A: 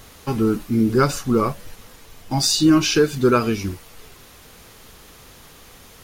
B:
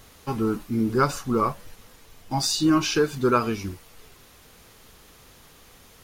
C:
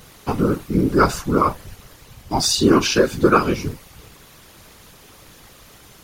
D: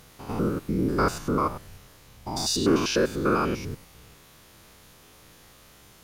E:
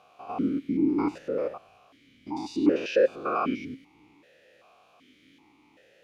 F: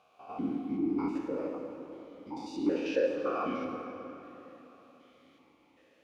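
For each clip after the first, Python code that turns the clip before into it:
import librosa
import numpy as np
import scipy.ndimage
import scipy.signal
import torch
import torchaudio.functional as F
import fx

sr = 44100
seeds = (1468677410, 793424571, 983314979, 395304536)

y1 = fx.dynamic_eq(x, sr, hz=1000.0, q=1.4, threshold_db=-35.0, ratio=4.0, max_db=7)
y1 = y1 * 10.0 ** (-6.0 / 20.0)
y2 = fx.whisperise(y1, sr, seeds[0])
y2 = y2 * 10.0 ** (5.5 / 20.0)
y3 = fx.spec_steps(y2, sr, hold_ms=100)
y3 = y3 * 10.0 ** (-5.0 / 20.0)
y4 = fx.vowel_held(y3, sr, hz=2.6)
y4 = y4 * 10.0 ** (8.5 / 20.0)
y5 = fx.rev_plate(y4, sr, seeds[1], rt60_s=3.6, hf_ratio=0.65, predelay_ms=0, drr_db=3.0)
y5 = y5 * 10.0 ** (-7.5 / 20.0)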